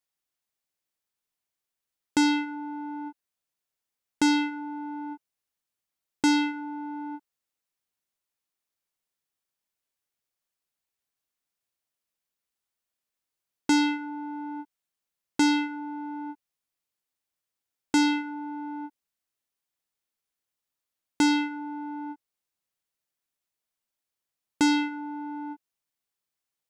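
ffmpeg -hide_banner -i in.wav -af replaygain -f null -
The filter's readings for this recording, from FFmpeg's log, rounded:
track_gain = +8.7 dB
track_peak = 0.146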